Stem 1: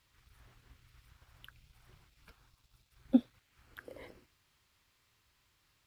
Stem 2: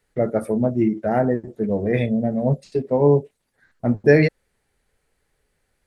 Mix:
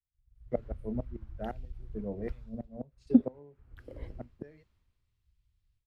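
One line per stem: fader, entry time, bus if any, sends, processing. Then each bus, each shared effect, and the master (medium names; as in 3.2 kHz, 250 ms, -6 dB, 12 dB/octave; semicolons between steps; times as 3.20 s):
-13.5 dB, 0.00 s, no send, tilt EQ -4.5 dB/octave; level rider gain up to 15 dB
-5.5 dB, 0.35 s, no send, bass shelf 500 Hz +3.5 dB; inverted gate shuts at -8 dBFS, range -24 dB; auto duck -12 dB, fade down 0.95 s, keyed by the first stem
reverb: none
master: three bands expanded up and down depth 70%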